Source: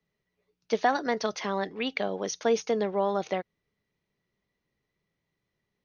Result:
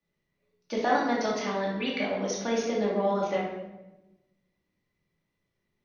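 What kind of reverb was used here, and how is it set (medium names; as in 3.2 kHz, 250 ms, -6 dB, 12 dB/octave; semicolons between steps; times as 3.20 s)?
simulated room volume 440 m³, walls mixed, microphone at 2.5 m; trim -6 dB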